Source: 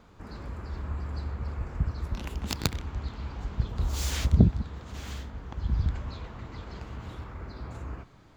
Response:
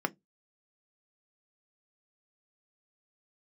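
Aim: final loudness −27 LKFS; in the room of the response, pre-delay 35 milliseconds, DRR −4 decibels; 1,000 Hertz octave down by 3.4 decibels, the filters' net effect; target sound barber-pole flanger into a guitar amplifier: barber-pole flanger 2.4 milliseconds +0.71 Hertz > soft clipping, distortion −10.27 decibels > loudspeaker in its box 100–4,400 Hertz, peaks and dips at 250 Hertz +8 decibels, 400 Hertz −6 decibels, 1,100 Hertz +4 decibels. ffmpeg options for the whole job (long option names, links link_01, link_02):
-filter_complex "[0:a]equalizer=frequency=1000:width_type=o:gain=-6.5,asplit=2[link_01][link_02];[1:a]atrim=start_sample=2205,adelay=35[link_03];[link_02][link_03]afir=irnorm=-1:irlink=0,volume=-2.5dB[link_04];[link_01][link_04]amix=inputs=2:normalize=0,asplit=2[link_05][link_06];[link_06]adelay=2.4,afreqshift=0.71[link_07];[link_05][link_07]amix=inputs=2:normalize=1,asoftclip=threshold=-14.5dB,highpass=100,equalizer=frequency=250:width_type=q:width=4:gain=8,equalizer=frequency=400:width_type=q:width=4:gain=-6,equalizer=frequency=1100:width_type=q:width=4:gain=4,lowpass=frequency=4400:width=0.5412,lowpass=frequency=4400:width=1.3066,volume=6.5dB"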